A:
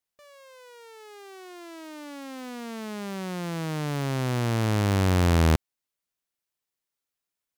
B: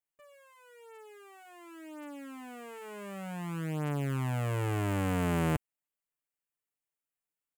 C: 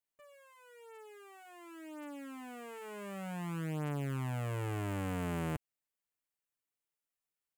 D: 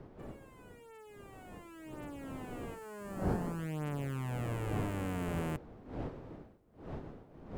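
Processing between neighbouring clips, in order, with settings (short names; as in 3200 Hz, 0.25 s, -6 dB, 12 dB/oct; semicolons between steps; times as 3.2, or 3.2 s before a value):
band shelf 4600 Hz -11.5 dB 1 oct; comb 6.8 ms, depth 98%; gain -9 dB
compressor, threshold -32 dBFS, peak gain reduction 6.5 dB; gain -1.5 dB
wind noise 390 Hz -43 dBFS; spectral gain 2.74–3.59, 1900–4100 Hz -7 dB; gain -1 dB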